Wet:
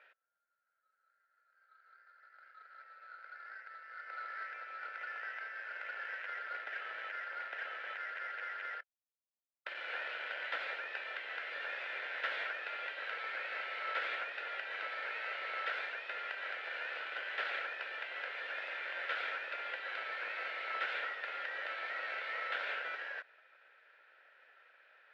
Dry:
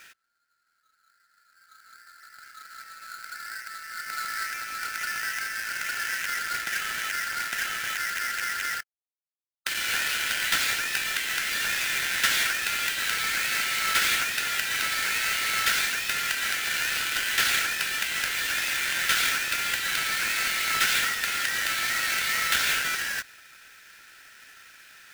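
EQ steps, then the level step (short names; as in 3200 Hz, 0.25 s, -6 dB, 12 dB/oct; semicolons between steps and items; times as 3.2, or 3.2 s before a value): ladder high-pass 480 Hz, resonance 60%; LPF 5000 Hz 12 dB/oct; air absorption 470 m; +2.0 dB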